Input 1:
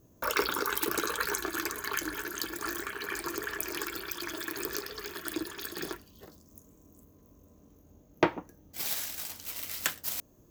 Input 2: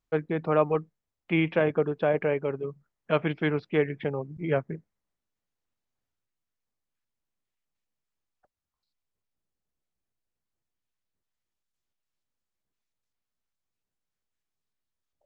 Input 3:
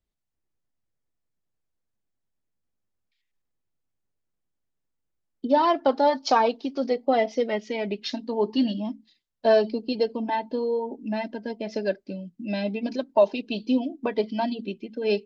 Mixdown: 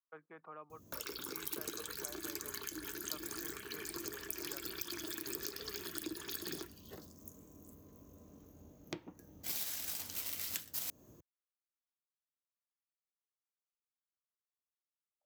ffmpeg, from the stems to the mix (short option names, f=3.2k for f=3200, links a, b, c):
-filter_complex "[0:a]acompressor=threshold=-37dB:ratio=5,adelay=700,volume=1dB[a];[1:a]bandpass=f=1.2k:t=q:w=3:csg=0,volume=-8dB[b];[a][b]amix=inputs=2:normalize=0,highpass=63,acrossover=split=370|3000[c][d][e];[d]acompressor=threshold=-52dB:ratio=5[f];[c][f][e]amix=inputs=3:normalize=0"